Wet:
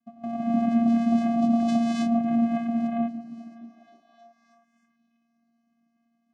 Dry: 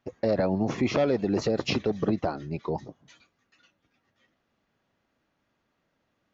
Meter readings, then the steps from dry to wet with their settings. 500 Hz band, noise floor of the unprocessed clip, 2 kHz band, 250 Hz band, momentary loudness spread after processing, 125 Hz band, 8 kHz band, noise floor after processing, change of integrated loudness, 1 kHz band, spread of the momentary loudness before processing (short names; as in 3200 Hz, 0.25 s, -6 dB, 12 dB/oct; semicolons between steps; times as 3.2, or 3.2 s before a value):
-5.5 dB, -76 dBFS, -5.0 dB, +8.0 dB, 12 LU, -6.0 dB, n/a, -72 dBFS, +3.5 dB, +5.5 dB, 8 LU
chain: random spectral dropouts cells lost 20%; level quantiser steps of 10 dB; non-linear reverb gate 0.33 s rising, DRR -7 dB; vocoder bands 4, square 232 Hz; delay with a stepping band-pass 0.313 s, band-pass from 170 Hz, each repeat 0.7 oct, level -10 dB; gain +1.5 dB